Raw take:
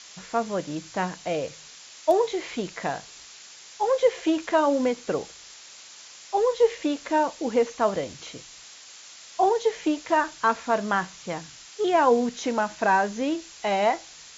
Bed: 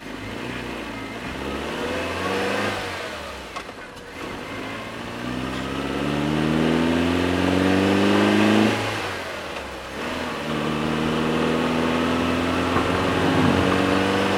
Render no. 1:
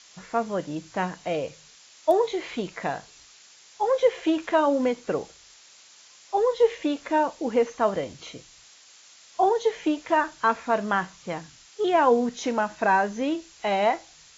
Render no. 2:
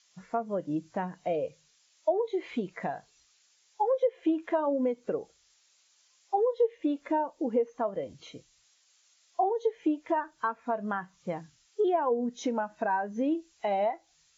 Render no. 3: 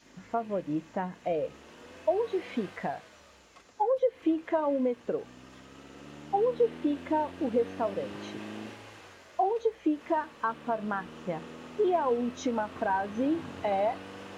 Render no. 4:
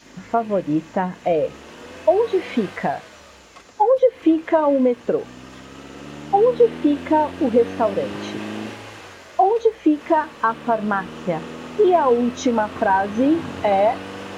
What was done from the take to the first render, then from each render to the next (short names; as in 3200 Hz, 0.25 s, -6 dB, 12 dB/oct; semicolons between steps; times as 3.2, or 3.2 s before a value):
noise print and reduce 6 dB
compressor 5:1, threshold -29 dBFS, peak gain reduction 14 dB; spectral expander 1.5:1
add bed -23.5 dB
gain +11 dB